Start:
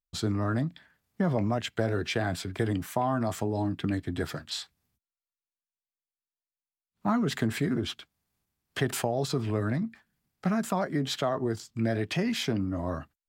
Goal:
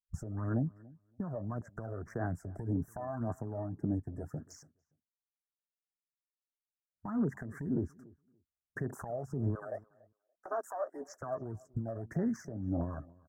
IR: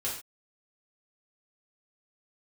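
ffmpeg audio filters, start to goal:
-filter_complex "[0:a]asettb=1/sr,asplit=3[s0][s1][s2];[s0]atrim=end=9.554[s3];[s1]atrim=start=9.55:end=11.23,asetpts=PTS-STARTPTS,afade=t=in:d=0.004:c=qsin,afade=t=out:st=1.676:d=0.004:c=qsin,highpass=f=470:w=0.5412,highpass=f=470:w=1.3066[s4];[s2]atrim=start=11.226[s5];[s3][s4]acrossfade=d=0.004:c1=hsin:c2=qsin[s6];[s6][s5]acrossfade=d=0.004:c1=qsin:c2=hsin,agate=range=0.178:threshold=0.00562:ratio=16:detection=peak,afwtdn=0.0178,acompressor=threshold=0.00708:ratio=2.5,alimiter=level_in=4.73:limit=0.0631:level=0:latency=1:release=222,volume=0.211,aphaser=in_gain=1:out_gain=1:delay=1.7:decay=0.61:speed=1.8:type=sinusoidal,asuperstop=centerf=3200:order=12:qfactor=0.82,asplit=2[s7][s8];[s8]adelay=286,lowpass=f=1500:p=1,volume=0.0708,asplit=2[s9][s10];[s10]adelay=286,lowpass=f=1500:p=1,volume=0.16[s11];[s7][s9][s11]amix=inputs=3:normalize=0,volume=2.11"

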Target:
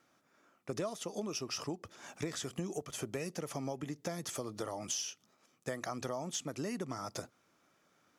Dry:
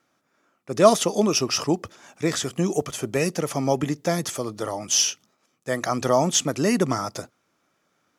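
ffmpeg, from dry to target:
-af "acompressor=threshold=0.02:ratio=10,volume=0.841"

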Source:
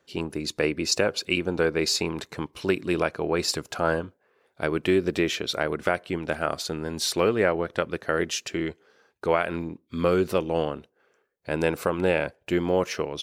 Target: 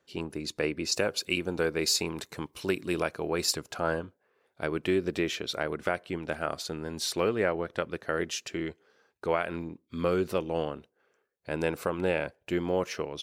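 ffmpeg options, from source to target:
-filter_complex "[0:a]asettb=1/sr,asplit=3[s0][s1][s2];[s0]atrim=end=0.944[s3];[s1]atrim=start=0.94:end=3.53,asetpts=PTS-STARTPTS,afade=t=in:d=0.004:c=qsin,afade=t=out:st=2.586:d=0.004:c=qsin,highshelf=f=7100:g=11[s4];[s2]atrim=start=3.526[s5];[s3][s4]acrossfade=d=0.004:c1=hsin:c2=qsin[s6];[s6][s5]acrossfade=d=0.004:c1=qsin:c2=hsin,volume=0.562"

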